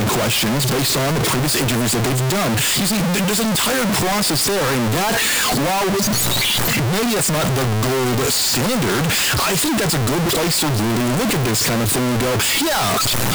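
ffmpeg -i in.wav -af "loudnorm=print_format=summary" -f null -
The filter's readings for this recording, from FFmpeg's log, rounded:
Input Integrated:    -16.9 LUFS
Input True Peak:     -11.7 dBTP
Input LRA:             0.2 LU
Input Threshold:     -26.9 LUFS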